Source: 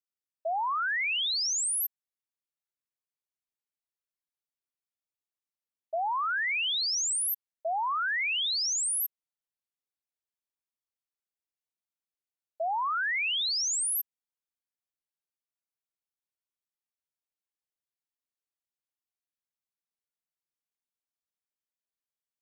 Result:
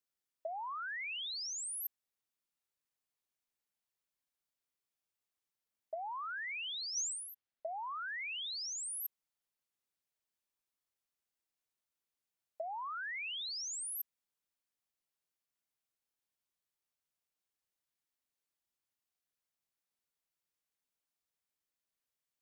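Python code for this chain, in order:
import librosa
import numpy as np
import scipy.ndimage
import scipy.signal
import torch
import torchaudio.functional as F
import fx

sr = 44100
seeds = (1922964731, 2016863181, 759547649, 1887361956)

y = fx.lowpass(x, sr, hz=4100.0, slope=12, at=(6.96, 7.79))
y = fx.over_compress(y, sr, threshold_db=-34.0, ratio=-0.5)
y = y * 10.0 ** (-4.5 / 20.0)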